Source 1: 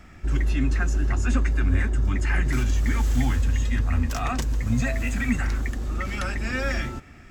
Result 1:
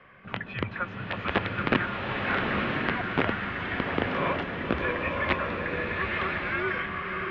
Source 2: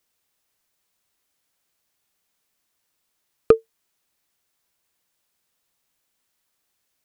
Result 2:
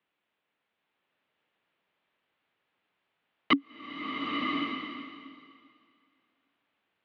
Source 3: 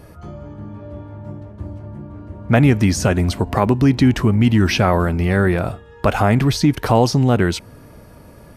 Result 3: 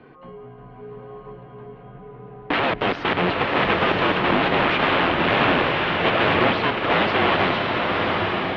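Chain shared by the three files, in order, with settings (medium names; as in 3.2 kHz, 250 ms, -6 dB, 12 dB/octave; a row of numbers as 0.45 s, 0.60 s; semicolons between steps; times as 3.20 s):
integer overflow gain 13.5 dB; mistuned SSB -170 Hz 330–3400 Hz; swelling reverb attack 1070 ms, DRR -0.5 dB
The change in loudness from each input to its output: -3.5 LU, -11.0 LU, -3.0 LU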